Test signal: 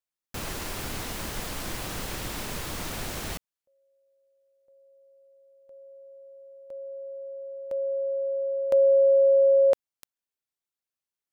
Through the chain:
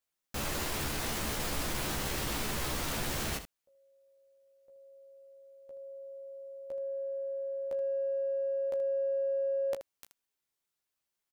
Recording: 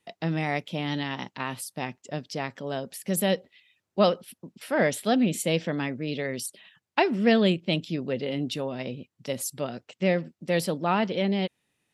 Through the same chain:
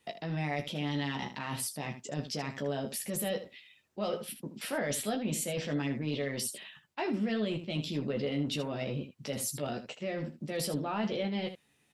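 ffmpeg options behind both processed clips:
-af "areverse,acompressor=threshold=0.0224:ratio=8:attack=0.74:release=38:knee=6:detection=rms,areverse,aecho=1:1:14|33|78:0.631|0.158|0.299,volume=1.41"

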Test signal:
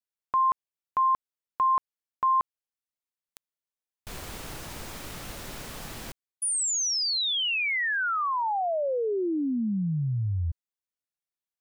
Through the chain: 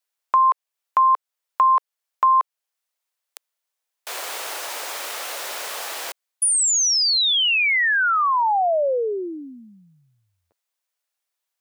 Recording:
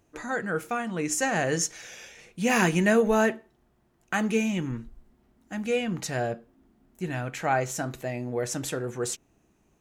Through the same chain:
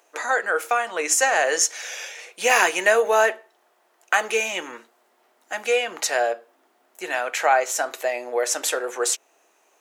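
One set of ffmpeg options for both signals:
-filter_complex "[0:a]highpass=f=500:w=0.5412,highpass=f=500:w=1.3066,asplit=2[s0][s1];[s1]acompressor=threshold=0.0224:ratio=6:attack=76:release=436:detection=rms,volume=1.33[s2];[s0][s2]amix=inputs=2:normalize=0,volume=1.58"

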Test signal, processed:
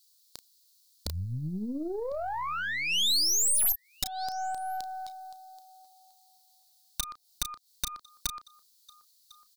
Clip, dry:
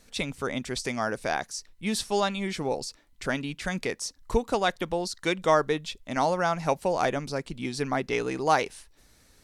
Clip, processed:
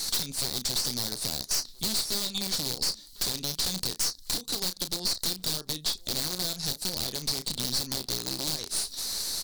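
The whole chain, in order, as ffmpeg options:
-filter_complex "[0:a]acompressor=threshold=0.0141:ratio=8,aeval=exprs='(mod(44.7*val(0)+1,2)-1)/44.7':c=same,asplit=2[s0][s1];[s1]adelay=33,volume=0.224[s2];[s0][s2]amix=inputs=2:normalize=0,aexciter=amount=4.1:drive=8.4:freq=3500,equalizer=f=4300:w=1.8:g=14.5,asplit=2[s3][s4];[s4]adelay=1050,volume=0.0562,highshelf=f=4000:g=-23.6[s5];[s3][s5]amix=inputs=2:normalize=0,acrossover=split=370[s6][s7];[s7]acompressor=threshold=0.0282:ratio=6[s8];[s6][s8]amix=inputs=2:normalize=0,highshelf=f=6200:g=6,aeval=exprs='(tanh(35.5*val(0)+0.65)-tanh(0.65))/35.5':c=same,volume=2.51"

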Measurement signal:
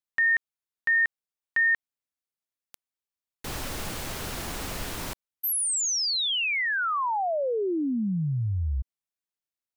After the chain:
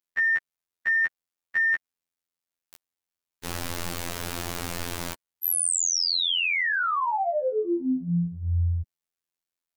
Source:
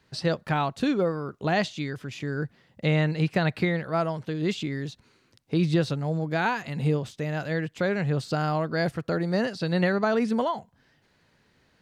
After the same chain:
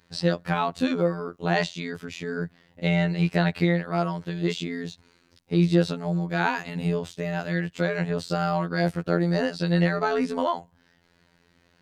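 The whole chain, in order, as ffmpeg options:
-af "acontrast=89,afftfilt=real='hypot(re,im)*cos(PI*b)':imag='0':win_size=2048:overlap=0.75,volume=0.75"

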